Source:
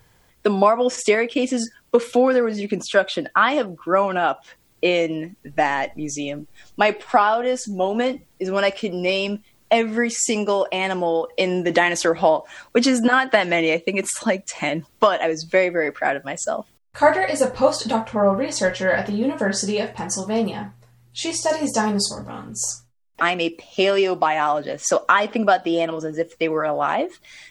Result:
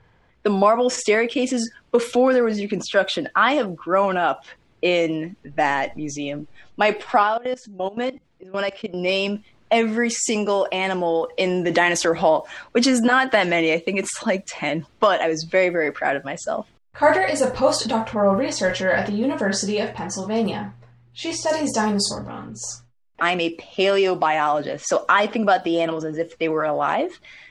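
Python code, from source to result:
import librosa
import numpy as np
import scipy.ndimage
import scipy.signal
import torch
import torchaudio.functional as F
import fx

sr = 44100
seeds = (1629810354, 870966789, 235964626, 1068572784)

y = fx.level_steps(x, sr, step_db=22, at=(7.23, 8.94))
y = fx.env_lowpass(y, sr, base_hz=2500.0, full_db=-14.5)
y = fx.transient(y, sr, attack_db=-2, sustain_db=4)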